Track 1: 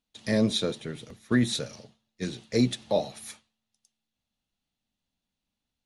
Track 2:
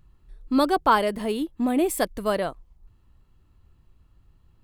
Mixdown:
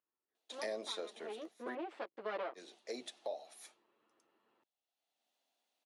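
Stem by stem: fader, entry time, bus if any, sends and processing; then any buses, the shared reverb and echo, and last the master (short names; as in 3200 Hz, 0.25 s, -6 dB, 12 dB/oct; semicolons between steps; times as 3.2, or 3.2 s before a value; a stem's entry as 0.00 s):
+2.0 dB, 0.35 s, muted 1.75–2.54, no send, bell 690 Hz +9 dB 0.52 oct; auto duck -15 dB, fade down 1.65 s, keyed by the second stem
1.1 s -23 dB -> 1.31 s -13.5 dB -> 2.14 s -13.5 dB -> 2.35 s -1 dB, 0.00 s, no send, minimum comb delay 9 ms; Bessel low-pass 2700 Hz, order 4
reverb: off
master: HPF 350 Hz 24 dB/oct; compressor 4:1, threshold -39 dBFS, peak gain reduction 12.5 dB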